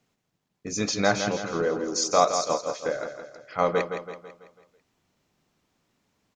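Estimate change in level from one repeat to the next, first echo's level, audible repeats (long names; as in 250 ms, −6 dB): −6.5 dB, −8.0 dB, 5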